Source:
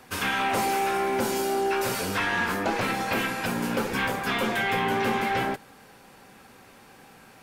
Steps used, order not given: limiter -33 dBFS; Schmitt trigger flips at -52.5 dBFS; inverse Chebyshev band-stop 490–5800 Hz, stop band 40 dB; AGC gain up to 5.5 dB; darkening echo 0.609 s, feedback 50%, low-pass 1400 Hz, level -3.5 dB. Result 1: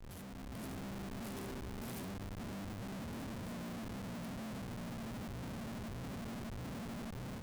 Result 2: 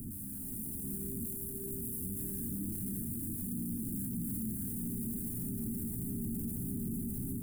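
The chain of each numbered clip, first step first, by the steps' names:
darkening echo > limiter > inverse Chebyshev band-stop > Schmitt trigger > AGC; darkening echo > Schmitt trigger > inverse Chebyshev band-stop > limiter > AGC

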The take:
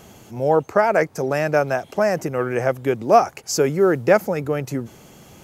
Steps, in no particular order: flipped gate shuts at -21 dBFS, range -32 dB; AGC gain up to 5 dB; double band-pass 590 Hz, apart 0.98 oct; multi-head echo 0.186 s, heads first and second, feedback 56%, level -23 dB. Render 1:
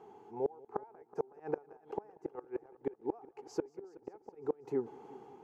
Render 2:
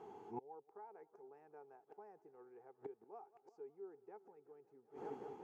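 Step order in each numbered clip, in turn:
AGC > double band-pass > flipped gate > multi-head echo; multi-head echo > AGC > flipped gate > double band-pass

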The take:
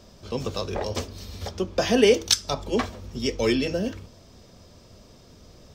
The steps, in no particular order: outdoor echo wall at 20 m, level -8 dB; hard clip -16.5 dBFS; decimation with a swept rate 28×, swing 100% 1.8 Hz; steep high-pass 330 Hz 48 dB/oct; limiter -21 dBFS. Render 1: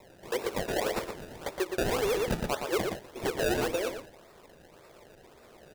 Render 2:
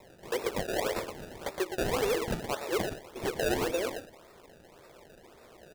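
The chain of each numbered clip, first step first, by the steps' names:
hard clip > steep high-pass > decimation with a swept rate > outdoor echo > limiter; hard clip > steep high-pass > limiter > outdoor echo > decimation with a swept rate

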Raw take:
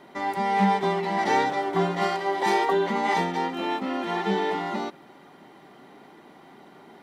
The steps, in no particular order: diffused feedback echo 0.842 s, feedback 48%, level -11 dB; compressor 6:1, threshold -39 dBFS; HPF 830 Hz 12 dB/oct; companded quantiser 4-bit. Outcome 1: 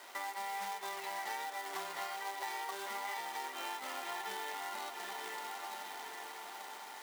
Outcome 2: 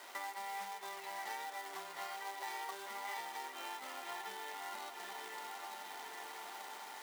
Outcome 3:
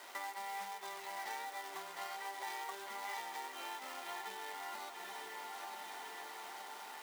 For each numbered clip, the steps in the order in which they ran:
diffused feedback echo > companded quantiser > HPF > compressor; diffused feedback echo > companded quantiser > compressor > HPF; companded quantiser > diffused feedback echo > compressor > HPF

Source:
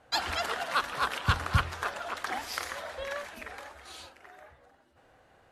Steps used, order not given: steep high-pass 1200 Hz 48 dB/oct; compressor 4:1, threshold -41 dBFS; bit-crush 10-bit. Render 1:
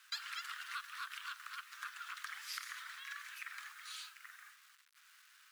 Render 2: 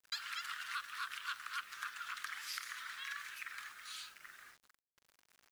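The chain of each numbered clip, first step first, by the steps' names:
compressor > bit-crush > steep high-pass; steep high-pass > compressor > bit-crush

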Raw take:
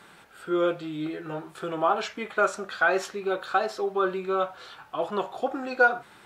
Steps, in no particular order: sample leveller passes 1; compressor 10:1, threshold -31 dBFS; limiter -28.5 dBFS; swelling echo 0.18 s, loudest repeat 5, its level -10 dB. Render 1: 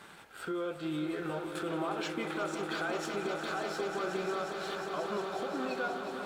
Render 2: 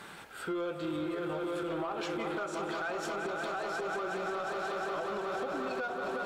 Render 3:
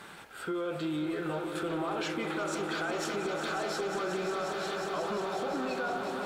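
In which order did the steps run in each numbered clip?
sample leveller > compressor > limiter > swelling echo; swelling echo > compressor > limiter > sample leveller; limiter > swelling echo > compressor > sample leveller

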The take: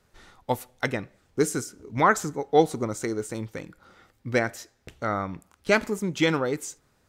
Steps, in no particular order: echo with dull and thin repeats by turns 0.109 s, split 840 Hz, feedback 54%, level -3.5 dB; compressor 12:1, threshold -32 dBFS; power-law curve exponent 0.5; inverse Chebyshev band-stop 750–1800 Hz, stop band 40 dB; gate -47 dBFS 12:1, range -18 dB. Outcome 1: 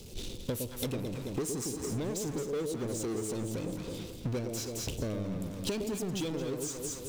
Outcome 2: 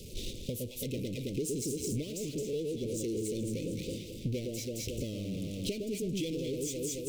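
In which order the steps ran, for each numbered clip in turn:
gate > inverse Chebyshev band-stop > power-law curve > echo with dull and thin repeats by turns > compressor; echo with dull and thin repeats by turns > gate > power-law curve > compressor > inverse Chebyshev band-stop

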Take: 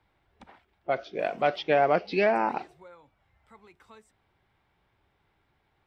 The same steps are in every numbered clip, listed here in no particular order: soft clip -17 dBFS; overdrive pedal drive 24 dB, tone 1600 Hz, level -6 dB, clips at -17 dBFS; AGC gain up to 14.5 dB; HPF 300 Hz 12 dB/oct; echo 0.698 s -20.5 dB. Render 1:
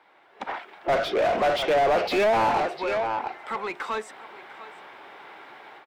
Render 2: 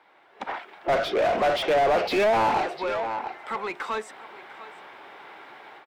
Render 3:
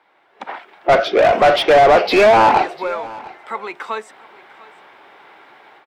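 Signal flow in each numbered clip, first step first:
HPF > AGC > echo > soft clip > overdrive pedal; HPF > AGC > soft clip > echo > overdrive pedal; soft clip > HPF > overdrive pedal > AGC > echo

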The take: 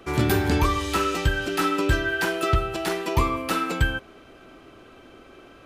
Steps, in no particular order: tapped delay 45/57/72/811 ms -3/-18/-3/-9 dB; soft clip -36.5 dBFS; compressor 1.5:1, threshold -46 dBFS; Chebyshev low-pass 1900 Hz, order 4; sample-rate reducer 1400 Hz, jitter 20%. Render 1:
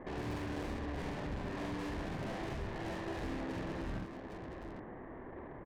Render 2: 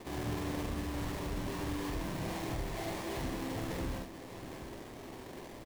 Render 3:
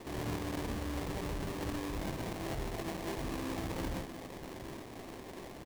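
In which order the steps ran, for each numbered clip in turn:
sample-rate reducer > Chebyshev low-pass > soft clip > tapped delay > compressor; compressor > soft clip > Chebyshev low-pass > sample-rate reducer > tapped delay; Chebyshev low-pass > soft clip > compressor > tapped delay > sample-rate reducer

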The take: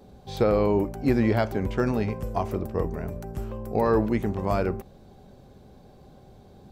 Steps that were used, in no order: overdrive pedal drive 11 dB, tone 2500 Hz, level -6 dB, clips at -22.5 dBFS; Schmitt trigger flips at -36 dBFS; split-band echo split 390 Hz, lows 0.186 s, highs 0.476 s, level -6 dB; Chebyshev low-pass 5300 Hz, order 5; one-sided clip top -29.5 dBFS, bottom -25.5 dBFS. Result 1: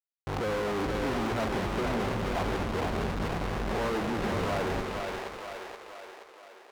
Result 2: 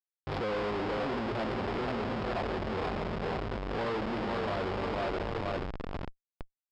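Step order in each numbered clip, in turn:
Chebyshev low-pass > Schmitt trigger > one-sided clip > split-band echo > overdrive pedal; split-band echo > one-sided clip > Schmitt trigger > Chebyshev low-pass > overdrive pedal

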